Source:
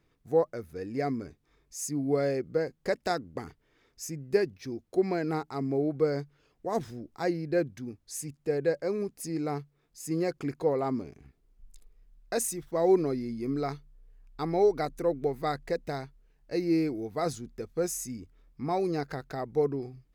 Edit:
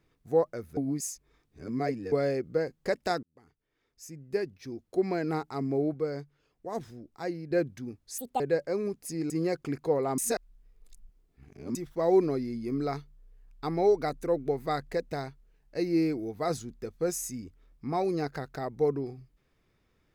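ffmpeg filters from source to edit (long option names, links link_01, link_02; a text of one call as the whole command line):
ffmpeg -i in.wav -filter_complex "[0:a]asplit=11[link_01][link_02][link_03][link_04][link_05][link_06][link_07][link_08][link_09][link_10][link_11];[link_01]atrim=end=0.772[link_12];[link_02]atrim=start=0.768:end=2.122,asetpts=PTS-STARTPTS,areverse[link_13];[link_03]atrim=start=2.118:end=3.23,asetpts=PTS-STARTPTS,afade=type=out:start_time=1.108:duration=0.004:curve=hsin[link_14];[link_04]atrim=start=3.23:end=5.942,asetpts=PTS-STARTPTS,afade=type=in:duration=2.03[link_15];[link_05]atrim=start=5.938:end=7.512,asetpts=PTS-STARTPTS,volume=-5dB[link_16];[link_06]atrim=start=7.508:end=8.184[link_17];[link_07]atrim=start=8.18:end=8.55,asetpts=PTS-STARTPTS,asetrate=74088,aresample=44100,atrim=end_sample=9712,asetpts=PTS-STARTPTS[link_18];[link_08]atrim=start=8.546:end=9.452[link_19];[link_09]atrim=start=10.058:end=10.942[link_20];[link_10]atrim=start=10.938:end=12.512,asetpts=PTS-STARTPTS,areverse[link_21];[link_11]atrim=start=12.508[link_22];[link_12][link_13]acrossfade=duration=0.004:curve1=hsin:curve2=hsin[link_23];[link_14][link_15]concat=n=2:v=0:a=1[link_24];[link_23][link_24]acrossfade=duration=0.004:curve1=hsin:curve2=hsin[link_25];[link_25][link_16]acrossfade=duration=0.004:curve1=hsin:curve2=hsin[link_26];[link_26][link_17]acrossfade=duration=0.004:curve1=hsin:curve2=hsin[link_27];[link_27][link_18]acrossfade=duration=0.004:curve1=hsin:curve2=hsin[link_28];[link_28][link_19]acrossfade=duration=0.004:curve1=hsin:curve2=hsin[link_29];[link_29][link_20]acrossfade=duration=0.004:curve1=hsin:curve2=hsin[link_30];[link_30][link_21]acrossfade=duration=0.004:curve1=hsin:curve2=hsin[link_31];[link_31][link_22]acrossfade=duration=0.004:curve1=hsin:curve2=hsin" out.wav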